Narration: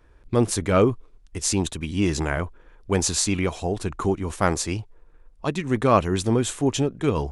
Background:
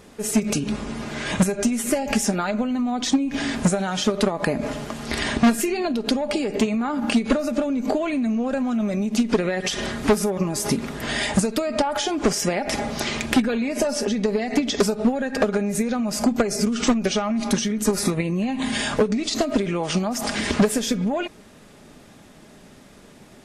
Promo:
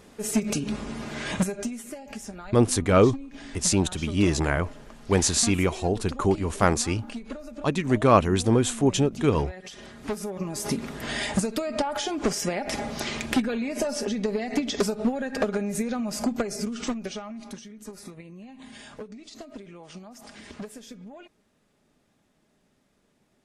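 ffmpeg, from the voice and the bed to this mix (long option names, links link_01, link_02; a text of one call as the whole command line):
ffmpeg -i stem1.wav -i stem2.wav -filter_complex "[0:a]adelay=2200,volume=0.5dB[link_01];[1:a]volume=8dB,afade=type=out:start_time=1.26:duration=0.63:silence=0.223872,afade=type=in:start_time=9.94:duration=0.81:silence=0.251189,afade=type=out:start_time=16:duration=1.62:silence=0.16788[link_02];[link_01][link_02]amix=inputs=2:normalize=0" out.wav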